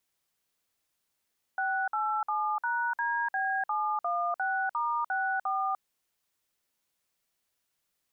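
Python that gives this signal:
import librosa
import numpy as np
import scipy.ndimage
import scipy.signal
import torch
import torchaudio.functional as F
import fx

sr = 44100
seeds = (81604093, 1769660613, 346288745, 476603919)

y = fx.dtmf(sr, digits='687#DB716*64', tone_ms=298, gap_ms=54, level_db=-29.5)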